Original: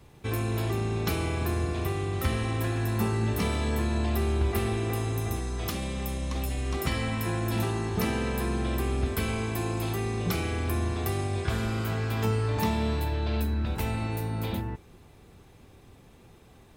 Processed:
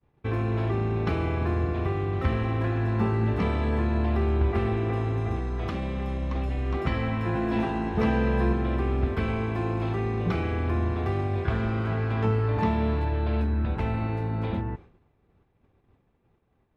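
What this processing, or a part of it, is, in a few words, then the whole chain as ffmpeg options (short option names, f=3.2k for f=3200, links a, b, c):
hearing-loss simulation: -filter_complex "[0:a]lowpass=2.1k,agate=range=-33dB:threshold=-42dB:ratio=3:detection=peak,asettb=1/sr,asplit=3[a][b][c];[a]atrim=end=7.344[d];[b]atrim=start=7.34:end=8.53,asetpts=PTS-STARTPTS,afade=t=in:d=0.004:c=qsin,afade=t=out:st=1.186:d=0.004:c=qsin,asplit=2[e][f];[f]adelay=14,volume=-2.5dB[g];[e][g]amix=inputs=2:normalize=0,atrim=end_sample=52479[h];[c]atrim=start=8.526[i];[d][h]acrossfade=d=0.004:c1=hsin:c2=qsin[j];[j][i]acrossfade=d=0.004:c1=qsin:c2=hsin,volume=2.5dB"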